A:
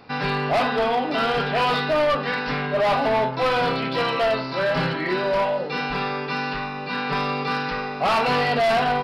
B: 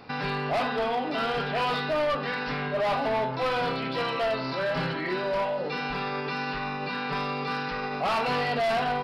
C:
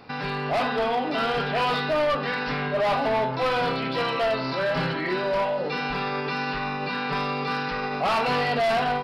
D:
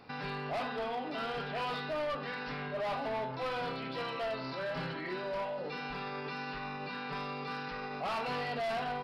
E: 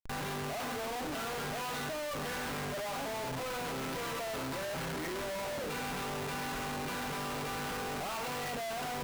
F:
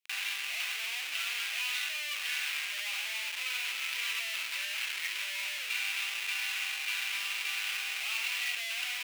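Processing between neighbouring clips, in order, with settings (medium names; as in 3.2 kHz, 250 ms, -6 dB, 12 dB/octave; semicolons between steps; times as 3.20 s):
peak limiter -23 dBFS, peak gain reduction 6.5 dB
level rider gain up to 3 dB
peak limiter -24.5 dBFS, peak gain reduction 4.5 dB; trim -7.5 dB
Schmitt trigger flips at -46 dBFS
resonant high-pass 2.5 kHz, resonance Q 3.2; trim +3.5 dB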